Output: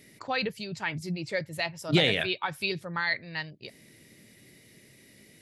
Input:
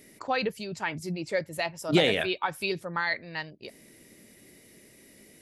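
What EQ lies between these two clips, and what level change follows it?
graphic EQ 125/2000/4000 Hz +10/+4/+6 dB; -4.0 dB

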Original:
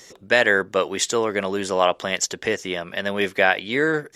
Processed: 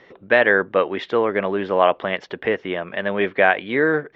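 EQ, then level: Bessel low-pass 2000 Hz, order 6; low shelf 110 Hz -8 dB; +3.5 dB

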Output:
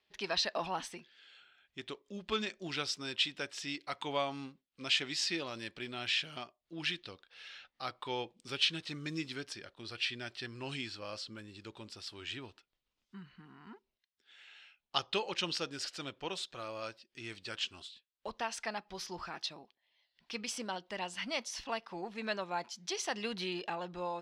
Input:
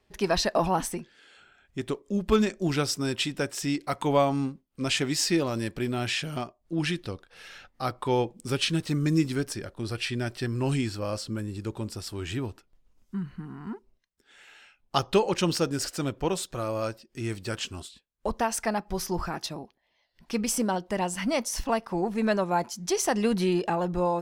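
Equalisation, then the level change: band-pass 3600 Hz, Q 1.6; tilt -3 dB/oct; +5.0 dB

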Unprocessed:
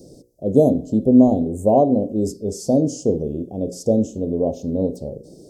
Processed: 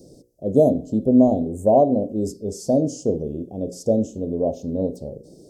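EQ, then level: dynamic EQ 630 Hz, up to +5 dB, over -29 dBFS, Q 3.9; -3.0 dB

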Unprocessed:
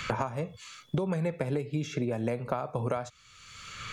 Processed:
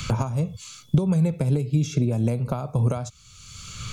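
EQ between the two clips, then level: tone controls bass +14 dB, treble +11 dB; bell 1800 Hz -10 dB 0.37 oct; 0.0 dB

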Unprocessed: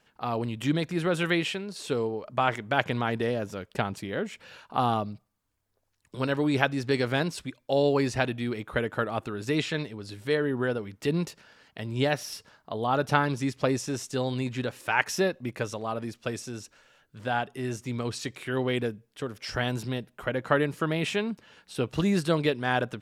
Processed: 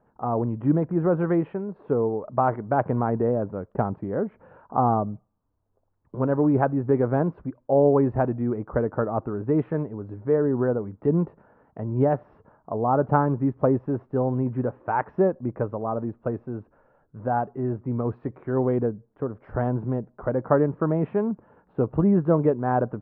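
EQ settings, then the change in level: LPF 1100 Hz 24 dB/oct; air absorption 110 m; +5.5 dB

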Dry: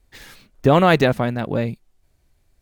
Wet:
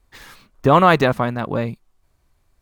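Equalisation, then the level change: bell 1100 Hz +9 dB 0.67 oct; -1.0 dB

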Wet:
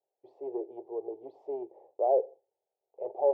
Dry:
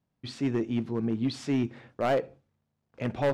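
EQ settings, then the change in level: elliptic band-pass 390–840 Hz, stop band 40 dB; +2.0 dB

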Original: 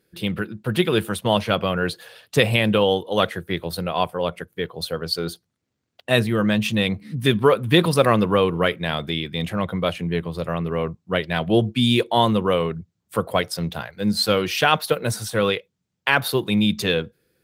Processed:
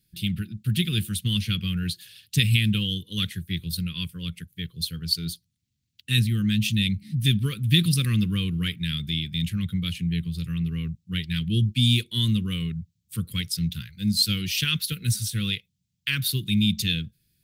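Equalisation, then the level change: Chebyshev band-stop 160–3200 Hz, order 2; low shelf 83 Hz +8.5 dB; high shelf 10000 Hz +5.5 dB; 0.0 dB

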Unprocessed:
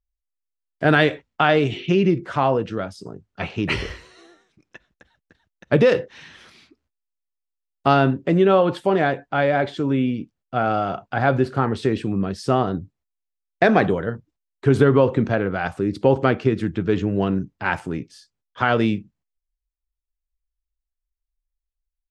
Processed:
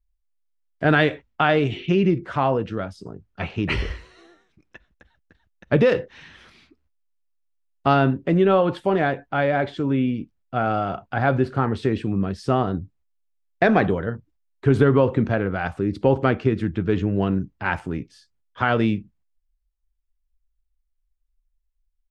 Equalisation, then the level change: tone controls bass +13 dB, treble -6 dB; bell 130 Hz -11 dB 2.1 oct; -1.0 dB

